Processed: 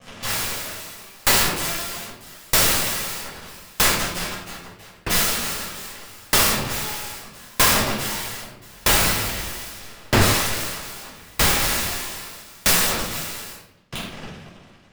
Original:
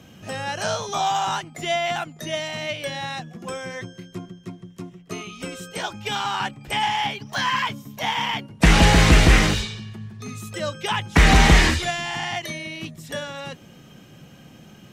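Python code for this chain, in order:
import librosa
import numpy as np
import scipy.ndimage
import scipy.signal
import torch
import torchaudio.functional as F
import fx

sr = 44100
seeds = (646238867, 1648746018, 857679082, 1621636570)

y = scipy.signal.sosfilt(scipy.signal.butter(2, 4400.0, 'lowpass', fs=sr, output='sos'), x)
y = fx.low_shelf(y, sr, hz=490.0, db=-3.5)
y = fx.leveller(y, sr, passes=5)
y = fx.rider(y, sr, range_db=4, speed_s=2.0)
y = (np.mod(10.0 ** (19.0 / 20.0) * y + 1.0, 2.0) - 1.0) / 10.0 ** (19.0 / 20.0)
y = fx.room_shoebox(y, sr, seeds[0], volume_m3=410.0, walls='mixed', distance_m=5.8)
y = fx.tremolo_decay(y, sr, direction='decaying', hz=0.79, depth_db=33)
y = y * 10.0 ** (-1.0 / 20.0)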